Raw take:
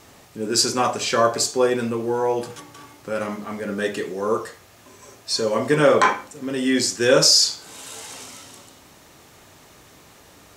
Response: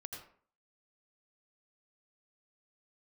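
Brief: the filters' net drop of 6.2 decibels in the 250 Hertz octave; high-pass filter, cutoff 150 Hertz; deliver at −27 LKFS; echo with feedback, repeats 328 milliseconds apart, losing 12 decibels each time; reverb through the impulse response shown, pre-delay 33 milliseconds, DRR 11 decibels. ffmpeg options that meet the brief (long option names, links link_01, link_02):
-filter_complex "[0:a]highpass=150,equalizer=frequency=250:width_type=o:gain=-7.5,aecho=1:1:328|656|984:0.251|0.0628|0.0157,asplit=2[link_01][link_02];[1:a]atrim=start_sample=2205,adelay=33[link_03];[link_02][link_03]afir=irnorm=-1:irlink=0,volume=-8dB[link_04];[link_01][link_04]amix=inputs=2:normalize=0,volume=-6.5dB"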